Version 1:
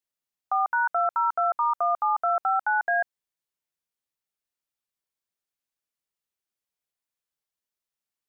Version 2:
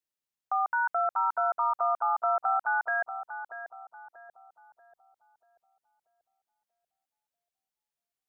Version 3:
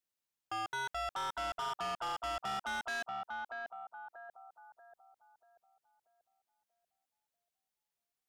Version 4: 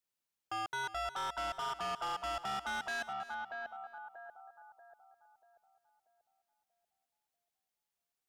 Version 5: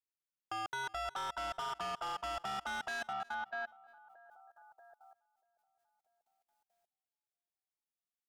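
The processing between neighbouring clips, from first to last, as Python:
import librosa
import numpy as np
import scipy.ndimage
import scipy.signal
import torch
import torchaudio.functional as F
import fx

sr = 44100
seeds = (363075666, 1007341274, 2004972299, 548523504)

y1 = fx.echo_filtered(x, sr, ms=637, feedback_pct=48, hz=1000.0, wet_db=-7.5)
y1 = F.gain(torch.from_numpy(y1), -3.5).numpy()
y2 = 10.0 ** (-35.5 / 20.0) * np.tanh(y1 / 10.0 ** (-35.5 / 20.0))
y3 = y2 + 10.0 ** (-15.0 / 20.0) * np.pad(y2, (int(320 * sr / 1000.0), 0))[:len(y2)]
y4 = fx.level_steps(y3, sr, step_db=21)
y4 = F.gain(torch.from_numpy(y4), 3.5).numpy()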